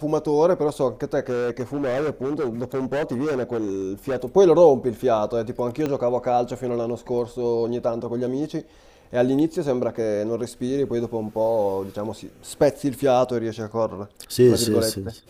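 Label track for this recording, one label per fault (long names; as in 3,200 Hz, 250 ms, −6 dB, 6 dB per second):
1.290000	4.240000	clipping −21 dBFS
5.860000	5.860000	click −13 dBFS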